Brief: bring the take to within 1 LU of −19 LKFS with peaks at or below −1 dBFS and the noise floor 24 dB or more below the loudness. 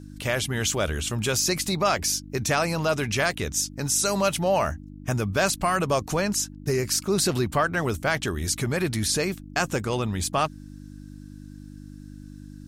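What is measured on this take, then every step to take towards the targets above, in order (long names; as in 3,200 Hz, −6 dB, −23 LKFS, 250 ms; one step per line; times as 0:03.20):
mains hum 50 Hz; hum harmonics up to 300 Hz; level of the hum −39 dBFS; integrated loudness −25.0 LKFS; sample peak −10.0 dBFS; target loudness −19.0 LKFS
→ hum removal 50 Hz, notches 6
level +6 dB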